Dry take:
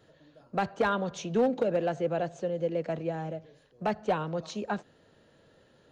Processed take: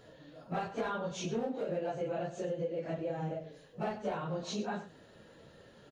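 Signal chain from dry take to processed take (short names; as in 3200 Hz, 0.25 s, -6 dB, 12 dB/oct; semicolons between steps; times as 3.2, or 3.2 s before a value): phase scrambler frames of 0.1 s; compressor 5:1, threshold -38 dBFS, peak gain reduction 15.5 dB; on a send: echo 94 ms -13 dB; on the sum: gain +4 dB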